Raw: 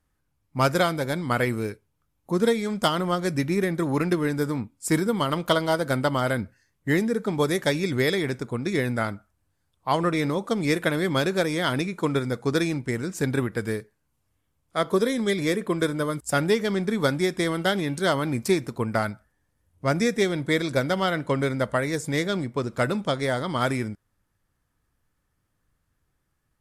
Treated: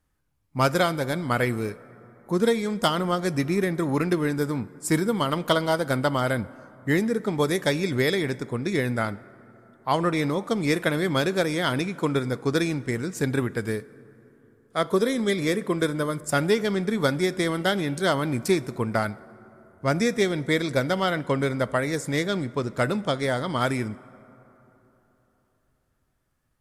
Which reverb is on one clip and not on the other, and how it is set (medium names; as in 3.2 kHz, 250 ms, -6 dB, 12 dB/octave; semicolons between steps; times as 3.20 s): plate-style reverb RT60 3.6 s, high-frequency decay 0.4×, DRR 19 dB